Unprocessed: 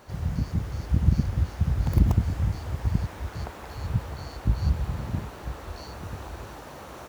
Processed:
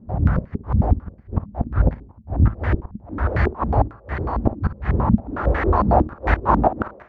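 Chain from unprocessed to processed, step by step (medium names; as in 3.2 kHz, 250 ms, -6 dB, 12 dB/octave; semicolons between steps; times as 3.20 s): recorder AGC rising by 17 dB/s; inverted gate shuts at -13 dBFS, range -34 dB; flutter echo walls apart 9.6 m, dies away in 0.23 s; on a send at -19 dB: reverberation RT60 0.75 s, pre-delay 3 ms; on the sum: step-sequenced low-pass 11 Hz 210–1900 Hz; trim +6.5 dB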